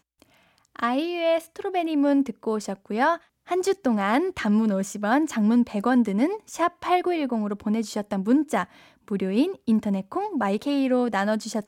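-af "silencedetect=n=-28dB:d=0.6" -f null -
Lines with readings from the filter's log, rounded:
silence_start: 0.00
silence_end: 0.76 | silence_duration: 0.76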